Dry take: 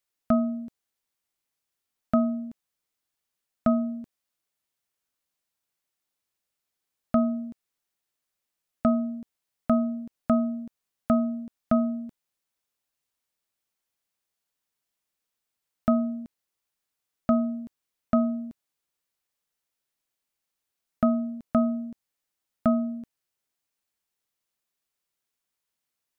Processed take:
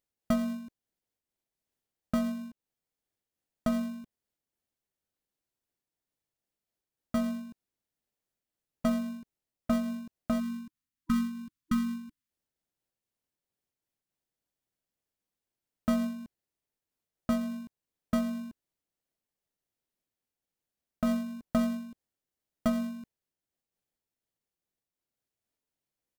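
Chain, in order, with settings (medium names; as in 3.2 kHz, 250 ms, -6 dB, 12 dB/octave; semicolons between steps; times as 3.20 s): harmony voices -4 st -15 dB; in parallel at -5.5 dB: sample-rate reducer 1.3 kHz, jitter 0%; on the sum: spectral selection erased 10.40–12.30 s, 320–980 Hz; random flutter of the level, depth 60%; trim -5.5 dB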